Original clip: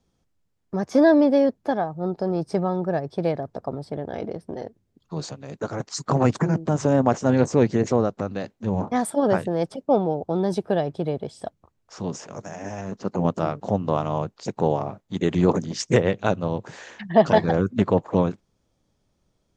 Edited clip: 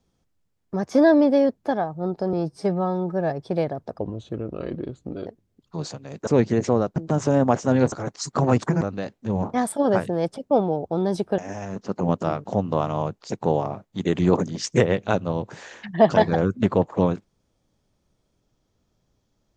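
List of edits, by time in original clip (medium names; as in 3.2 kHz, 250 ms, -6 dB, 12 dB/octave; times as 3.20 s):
2.33–2.98 s: stretch 1.5×
3.66–4.65 s: speed 77%
5.65–6.54 s: swap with 7.50–8.19 s
10.76–12.54 s: delete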